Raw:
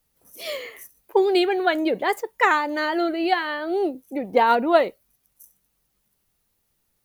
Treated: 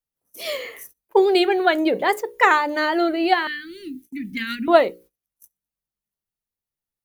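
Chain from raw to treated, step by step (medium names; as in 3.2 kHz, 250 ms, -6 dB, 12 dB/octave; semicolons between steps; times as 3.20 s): 3.47–4.68 s: elliptic band-stop 260–1800 Hz, stop band 60 dB; hum notches 60/120/180/240/300/360/420/480/540 Hz; gate -47 dBFS, range -22 dB; trim +3 dB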